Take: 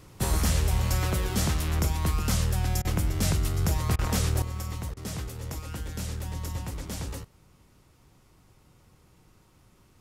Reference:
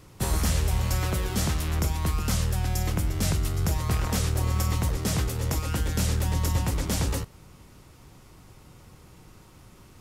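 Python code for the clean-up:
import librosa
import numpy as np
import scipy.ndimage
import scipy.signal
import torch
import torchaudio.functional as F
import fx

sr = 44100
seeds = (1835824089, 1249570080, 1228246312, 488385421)

y = fx.fix_interpolate(x, sr, at_s=(2.82, 3.96, 4.94), length_ms=27.0)
y = fx.gain(y, sr, db=fx.steps((0.0, 0.0), (4.42, 8.5)))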